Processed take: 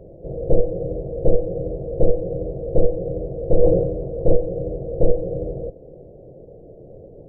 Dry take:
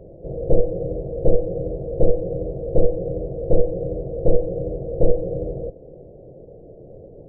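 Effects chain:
0:03.60–0:04.36: level that may fall only so fast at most 52 dB per second

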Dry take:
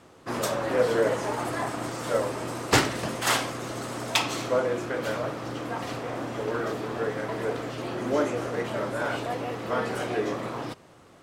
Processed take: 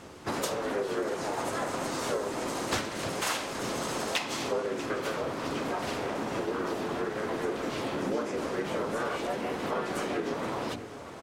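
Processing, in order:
high-shelf EQ 2,800 Hz +3 dB
mains-hum notches 60/120/180/240/300 Hz
downward compressor 5 to 1, threshold −35 dBFS, peak gain reduction 18 dB
pitch-shifted copies added −4 semitones 0 dB, +4 semitones −17 dB
tape delay 645 ms, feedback 72%, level −14.5 dB, low-pass 5,500 Hz
level +2.5 dB

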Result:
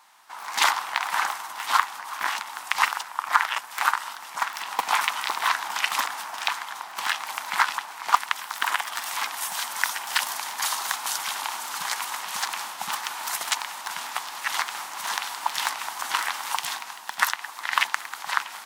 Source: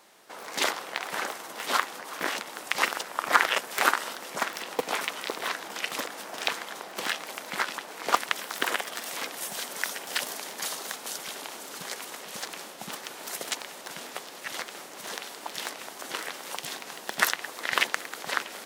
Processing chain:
low shelf with overshoot 670 Hz −11 dB, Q 3
automatic gain control gain up to 8 dB
level −1 dB

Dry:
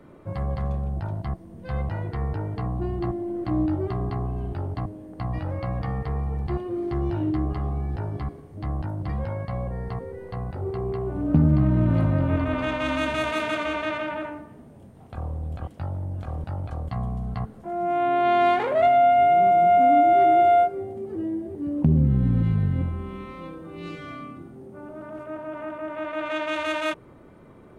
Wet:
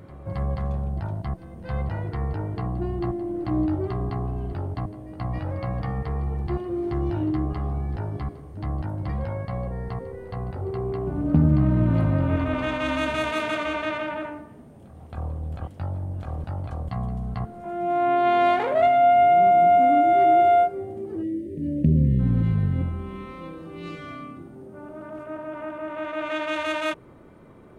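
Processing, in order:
echo ahead of the sound 271 ms −16.5 dB
time-frequency box erased 0:21.23–0:22.19, 630–1,700 Hz

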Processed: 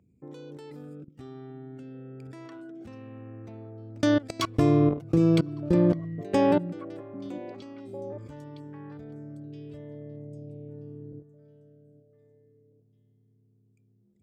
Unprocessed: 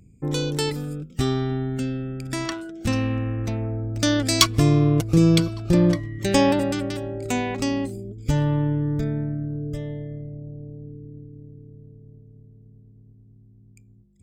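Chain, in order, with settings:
high-pass filter 60 Hz 24 dB per octave
bass and treble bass −7 dB, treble −5 dB
mains-hum notches 50/100/150 Hz
output level in coarse steps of 23 dB
tilt shelving filter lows +6 dB, about 1,500 Hz
on a send: echo through a band-pass that steps 798 ms, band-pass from 200 Hz, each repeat 1.4 octaves, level −11.5 dB
on the sum: level −2 dB

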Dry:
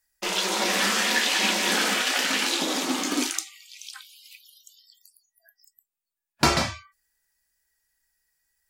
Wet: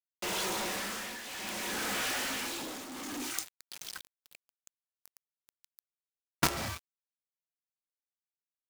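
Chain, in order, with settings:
dynamic equaliser 4,000 Hz, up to −5 dB, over −38 dBFS, Q 0.82
log-companded quantiser 2 bits
shaped tremolo triangle 0.61 Hz, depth 75%
level −7 dB

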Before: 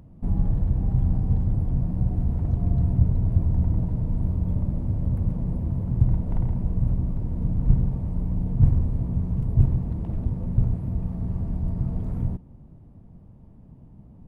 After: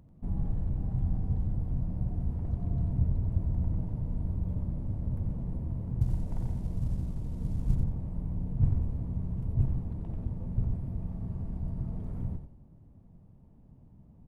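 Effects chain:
0:06.01–0:07.75: variable-slope delta modulation 64 kbit/s
echo with shifted repeats 89 ms, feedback 30%, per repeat −39 Hz, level −7 dB
level −8.5 dB

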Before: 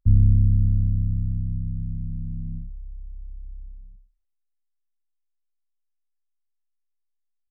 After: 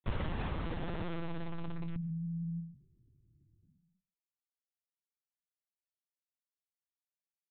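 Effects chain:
downward expander −35 dBFS
high-pass filter 160 Hz 24 dB per octave
mains-hum notches 50/100/150/200/250/300 Hz
gate on every frequency bin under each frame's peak −25 dB strong
low-pass that shuts in the quiet parts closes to 300 Hz, open at −36 dBFS
in parallel at −4 dB: wrap-around overflow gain 33 dB
on the sum: double-tracking delay 28 ms −3.5 dB
on a send: single-tap delay 138 ms −22.5 dB
on the sum: linear-prediction vocoder at 8 kHz pitch kept
one half of a high-frequency compander encoder only

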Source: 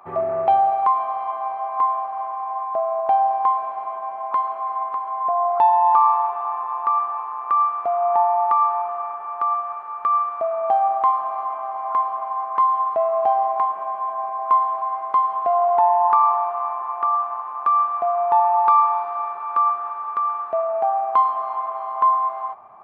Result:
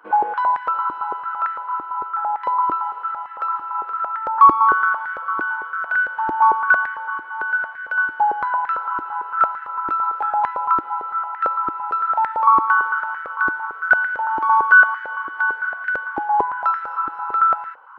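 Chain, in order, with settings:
speed change +27%
high-pass on a step sequencer 8.9 Hz 320–1,800 Hz
level −5 dB

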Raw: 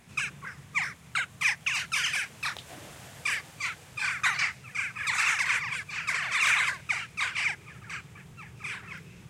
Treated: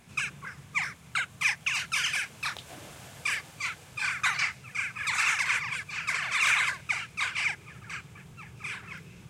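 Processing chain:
notch filter 1,900 Hz, Q 18

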